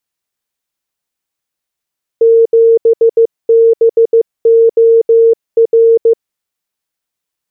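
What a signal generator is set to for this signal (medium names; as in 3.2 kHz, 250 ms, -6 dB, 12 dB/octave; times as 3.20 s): Morse "7BOR" 15 wpm 457 Hz -3.5 dBFS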